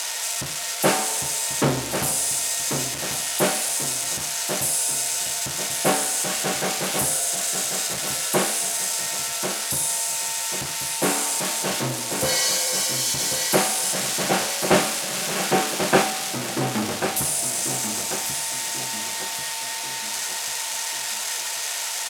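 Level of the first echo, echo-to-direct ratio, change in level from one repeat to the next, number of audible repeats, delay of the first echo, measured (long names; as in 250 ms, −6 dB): −8.0 dB, −7.0 dB, −7.0 dB, 4, 1,090 ms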